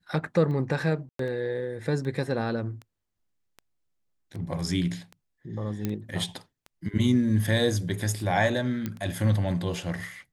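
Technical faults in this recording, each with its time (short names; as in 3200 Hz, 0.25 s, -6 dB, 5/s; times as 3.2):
tick 78 rpm -28 dBFS
1.09–1.19 gap 0.103 s
5.85 pop -15 dBFS
8.86 pop -17 dBFS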